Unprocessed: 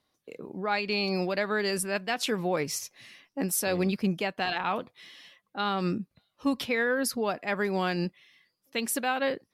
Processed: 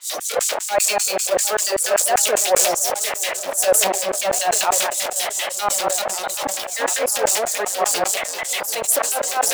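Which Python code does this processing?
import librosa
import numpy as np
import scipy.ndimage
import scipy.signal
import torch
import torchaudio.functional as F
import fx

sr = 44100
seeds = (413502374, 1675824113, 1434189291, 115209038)

p1 = fx.reverse_delay(x, sr, ms=215, wet_db=-3.5)
p2 = fx.power_curve(p1, sr, exponent=0.35)
p3 = fx.fold_sine(p2, sr, drive_db=18, ceiling_db=-13.5)
p4 = p2 + (p3 * 10.0 ** (-6.0 / 20.0))
p5 = fx.filter_lfo_highpass(p4, sr, shape='square', hz=5.1, low_hz=610.0, high_hz=7400.0, q=4.0)
p6 = fx.harmonic_tremolo(p5, sr, hz=5.1, depth_pct=100, crossover_hz=2100.0)
p7 = p6 + fx.echo_wet_lowpass(p6, sr, ms=743, feedback_pct=59, hz=1500.0, wet_db=-17, dry=0)
p8 = fx.sustainer(p7, sr, db_per_s=35.0)
y = p8 * 10.0 ** (-1.5 / 20.0)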